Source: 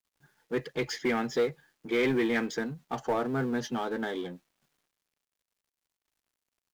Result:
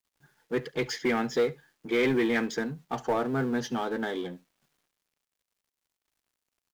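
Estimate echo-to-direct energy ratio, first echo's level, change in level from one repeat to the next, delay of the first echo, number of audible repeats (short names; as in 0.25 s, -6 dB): -21.5 dB, -21.5 dB, no steady repeat, 71 ms, 1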